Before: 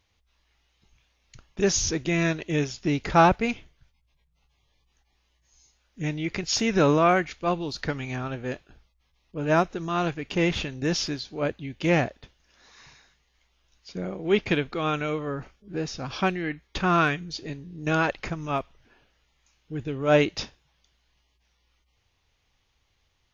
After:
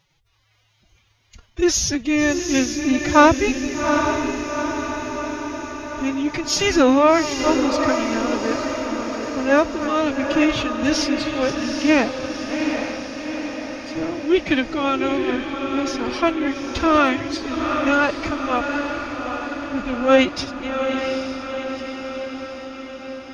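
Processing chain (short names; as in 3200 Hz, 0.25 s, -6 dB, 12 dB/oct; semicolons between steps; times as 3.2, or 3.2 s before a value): reverse delay 0.511 s, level -13.5 dB; formant-preserving pitch shift +10 st; diffused feedback echo 0.804 s, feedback 63%, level -6 dB; gain +5.5 dB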